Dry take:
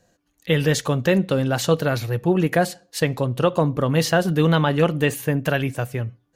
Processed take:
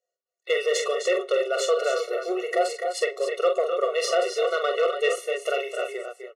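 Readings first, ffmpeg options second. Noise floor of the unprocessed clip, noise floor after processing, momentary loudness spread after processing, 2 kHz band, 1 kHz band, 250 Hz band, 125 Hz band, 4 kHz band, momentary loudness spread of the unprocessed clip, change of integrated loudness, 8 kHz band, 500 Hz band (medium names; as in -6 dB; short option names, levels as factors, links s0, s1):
-68 dBFS, under -85 dBFS, 5 LU, -4.0 dB, -2.5 dB, -18.5 dB, under -40 dB, -2.5 dB, 7 LU, -4.0 dB, -2.5 dB, -0.5 dB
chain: -filter_complex "[0:a]lowpass=f=9400:w=0.5412,lowpass=f=9400:w=1.3066,agate=range=0.0891:threshold=0.00355:ratio=16:detection=peak,asplit=2[s0][s1];[s1]aecho=0:1:43.73|256.6|288.6:0.447|0.316|0.355[s2];[s0][s2]amix=inputs=2:normalize=0,asoftclip=type=tanh:threshold=0.266,afftfilt=real='re*eq(mod(floor(b*sr/1024/370),2),1)':imag='im*eq(mod(floor(b*sr/1024/370),2),1)':win_size=1024:overlap=0.75"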